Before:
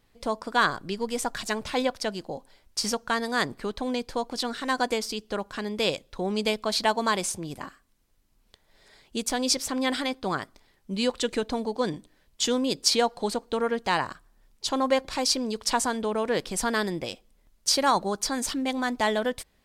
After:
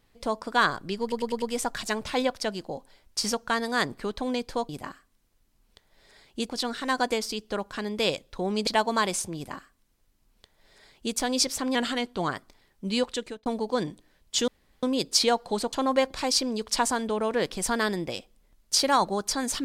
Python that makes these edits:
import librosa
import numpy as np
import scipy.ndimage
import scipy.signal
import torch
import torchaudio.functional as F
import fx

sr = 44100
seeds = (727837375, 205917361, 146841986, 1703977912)

y = fx.edit(x, sr, fx.stutter(start_s=1.02, slice_s=0.1, count=5),
    fx.cut(start_s=6.47, length_s=0.3),
    fx.duplicate(start_s=7.46, length_s=1.8, to_s=4.29),
    fx.speed_span(start_s=9.85, length_s=0.5, speed=0.93),
    fx.fade_out_span(start_s=11.06, length_s=0.46),
    fx.insert_room_tone(at_s=12.54, length_s=0.35),
    fx.cut(start_s=13.44, length_s=1.23), tone=tone)